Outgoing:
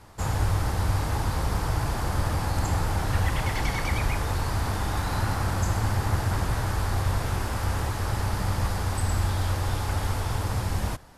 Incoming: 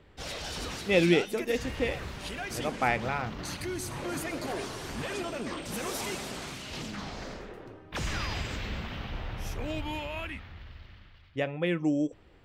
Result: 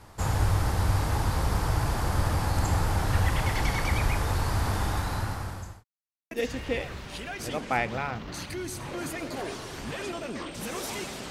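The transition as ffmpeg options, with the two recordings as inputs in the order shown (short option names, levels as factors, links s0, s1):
-filter_complex "[0:a]apad=whole_dur=11.3,atrim=end=11.3,asplit=2[s0][s1];[s0]atrim=end=5.84,asetpts=PTS-STARTPTS,afade=t=out:st=4.83:d=1.01[s2];[s1]atrim=start=5.84:end=6.31,asetpts=PTS-STARTPTS,volume=0[s3];[1:a]atrim=start=1.42:end=6.41,asetpts=PTS-STARTPTS,afade=t=in:d=0.004:c=hsin[s4];[s2][s3][s4]concat=n=3:v=0:a=1"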